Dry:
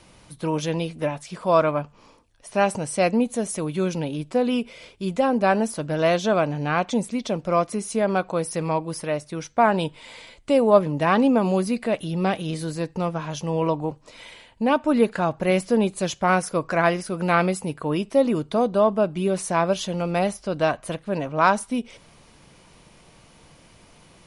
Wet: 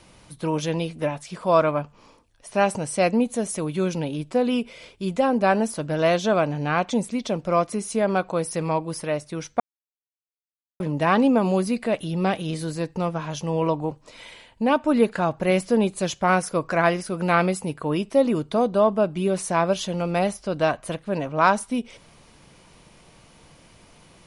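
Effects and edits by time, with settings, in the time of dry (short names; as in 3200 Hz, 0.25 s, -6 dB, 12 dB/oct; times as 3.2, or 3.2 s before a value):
9.6–10.8 mute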